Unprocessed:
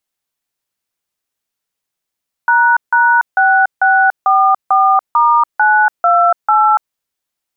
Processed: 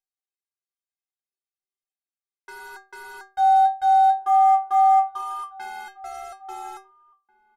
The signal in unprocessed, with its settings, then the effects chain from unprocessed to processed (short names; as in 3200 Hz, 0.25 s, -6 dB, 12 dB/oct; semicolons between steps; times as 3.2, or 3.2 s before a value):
DTMF "##6644*928", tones 0.287 s, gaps 0.158 s, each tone -10 dBFS
CVSD 64 kbps; metallic resonator 380 Hz, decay 0.33 s, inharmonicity 0.008; outdoor echo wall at 290 m, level -21 dB